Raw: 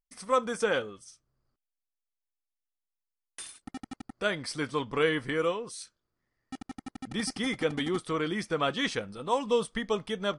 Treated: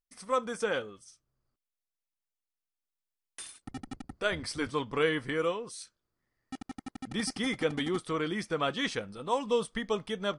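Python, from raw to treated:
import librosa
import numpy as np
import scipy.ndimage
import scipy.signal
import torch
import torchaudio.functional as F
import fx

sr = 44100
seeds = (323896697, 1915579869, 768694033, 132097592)

y = fx.octave_divider(x, sr, octaves=1, level_db=-4.0, at=(3.59, 4.71))
y = fx.rider(y, sr, range_db=4, speed_s=2.0)
y = y * librosa.db_to_amplitude(-2.0)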